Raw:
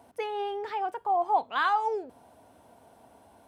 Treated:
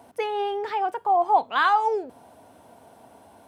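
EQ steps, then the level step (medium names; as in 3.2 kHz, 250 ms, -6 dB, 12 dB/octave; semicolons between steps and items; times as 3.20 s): high-pass 79 Hz; +5.5 dB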